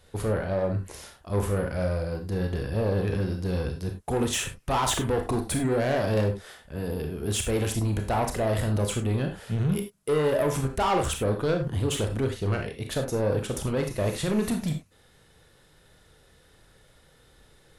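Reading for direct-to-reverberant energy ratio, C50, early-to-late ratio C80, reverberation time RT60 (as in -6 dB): 4.0 dB, 8.0 dB, 14.0 dB, no single decay rate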